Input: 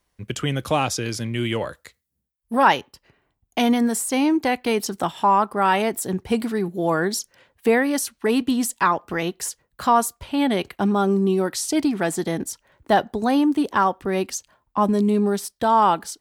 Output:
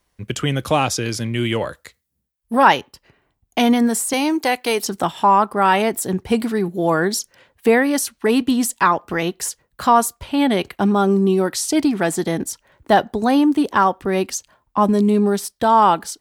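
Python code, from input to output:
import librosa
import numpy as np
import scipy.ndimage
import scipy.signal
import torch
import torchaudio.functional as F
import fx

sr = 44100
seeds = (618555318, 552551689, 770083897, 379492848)

y = fx.bass_treble(x, sr, bass_db=-13, treble_db=7, at=(4.13, 4.82))
y = y * 10.0 ** (3.5 / 20.0)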